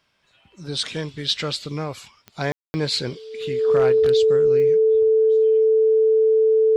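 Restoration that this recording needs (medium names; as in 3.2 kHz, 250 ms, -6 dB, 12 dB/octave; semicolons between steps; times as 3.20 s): clip repair -10.5 dBFS; de-click; band-stop 440 Hz, Q 30; room tone fill 2.52–2.74 s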